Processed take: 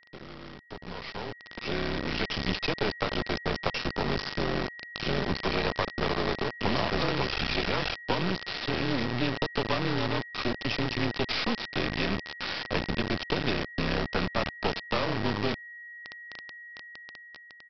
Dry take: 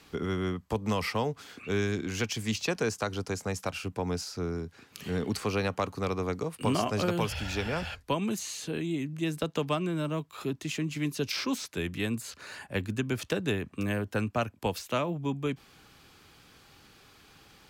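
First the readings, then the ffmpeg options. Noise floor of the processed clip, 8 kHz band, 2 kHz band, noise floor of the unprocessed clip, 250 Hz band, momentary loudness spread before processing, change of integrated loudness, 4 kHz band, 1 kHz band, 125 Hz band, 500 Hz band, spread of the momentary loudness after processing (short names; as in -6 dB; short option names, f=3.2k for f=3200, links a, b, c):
-49 dBFS, -13.0 dB, +5.5 dB, -58 dBFS, -0.5 dB, 5 LU, +2.0 dB, +6.0 dB, +3.0 dB, -0.5 dB, +0.5 dB, 14 LU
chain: -filter_complex "[0:a]asplit=2[a][b];[b]aecho=0:1:79|158|237:0.133|0.0413|0.0128[c];[a][c]amix=inputs=2:normalize=0,acompressor=threshold=-49dB:ratio=2.5,equalizer=f=1.7k:t=o:w=0.29:g=-4,afreqshift=-36,aresample=11025,acrusher=bits=5:dc=4:mix=0:aa=0.000001,aresample=44100,lowshelf=f=93:g=-5,aeval=exprs='val(0)+0.000794*sin(2*PI*1900*n/s)':c=same,dynaudnorm=f=630:g=5:m=16dB,volume=4dB"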